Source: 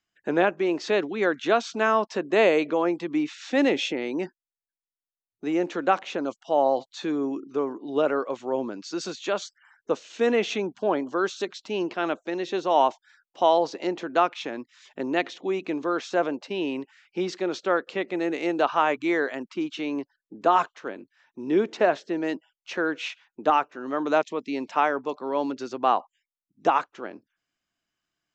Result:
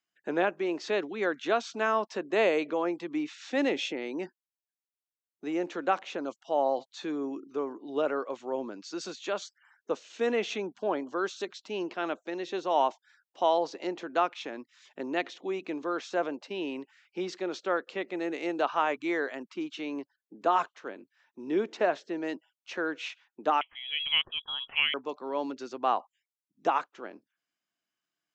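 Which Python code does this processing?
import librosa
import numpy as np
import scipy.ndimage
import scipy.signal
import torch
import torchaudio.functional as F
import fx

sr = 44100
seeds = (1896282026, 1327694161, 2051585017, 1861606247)

y = scipy.signal.sosfilt(scipy.signal.butter(2, 140.0, 'highpass', fs=sr, output='sos'), x)
y = fx.low_shelf(y, sr, hz=200.0, db=-4.0)
y = fx.freq_invert(y, sr, carrier_hz=3600, at=(23.61, 24.94))
y = F.gain(torch.from_numpy(y), -5.0).numpy()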